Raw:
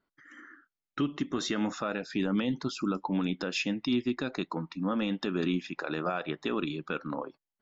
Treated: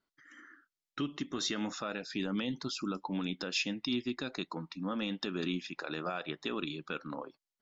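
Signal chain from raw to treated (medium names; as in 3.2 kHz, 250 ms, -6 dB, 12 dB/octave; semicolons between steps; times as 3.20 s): peaking EQ 4.9 kHz +8 dB 1.8 oct; trim -6 dB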